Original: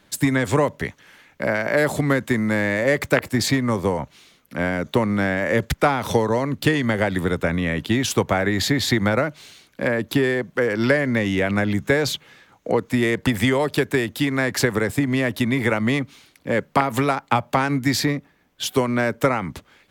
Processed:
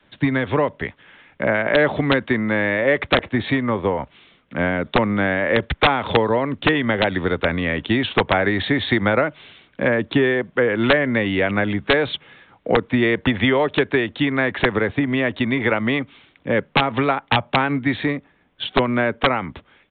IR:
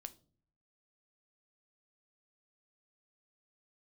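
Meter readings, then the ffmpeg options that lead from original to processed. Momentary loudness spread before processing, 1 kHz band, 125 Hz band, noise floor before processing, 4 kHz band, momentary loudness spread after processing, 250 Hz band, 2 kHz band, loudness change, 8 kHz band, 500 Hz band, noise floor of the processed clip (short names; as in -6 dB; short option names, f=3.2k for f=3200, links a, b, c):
6 LU, +2.5 dB, -1.5 dB, -58 dBFS, +2.5 dB, 7 LU, +0.5 dB, +3.0 dB, +1.5 dB, under -40 dB, +2.0 dB, -58 dBFS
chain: -af "adynamicequalizer=threshold=0.0158:dfrequency=140:dqfactor=0.97:tfrequency=140:tqfactor=0.97:attack=5:release=100:ratio=0.375:range=3.5:mode=cutabove:tftype=bell,dynaudnorm=f=430:g=5:m=4dB,aresample=8000,aeval=exprs='(mod(2*val(0)+1,2)-1)/2':c=same,aresample=44100"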